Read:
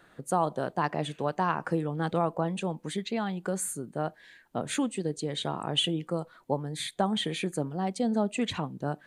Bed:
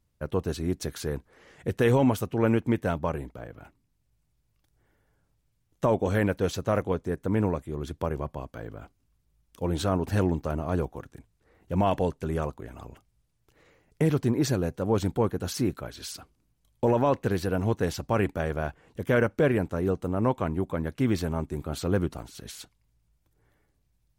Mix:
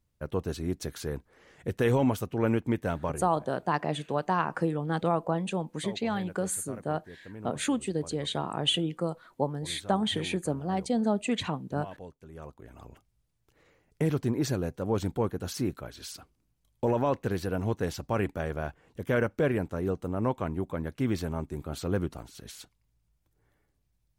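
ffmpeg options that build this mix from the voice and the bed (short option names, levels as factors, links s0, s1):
-filter_complex "[0:a]adelay=2900,volume=1.06[s0];[1:a]volume=3.98,afade=t=out:st=3.06:d=0.42:silence=0.16788,afade=t=in:st=12.33:d=0.65:silence=0.177828[s1];[s0][s1]amix=inputs=2:normalize=0"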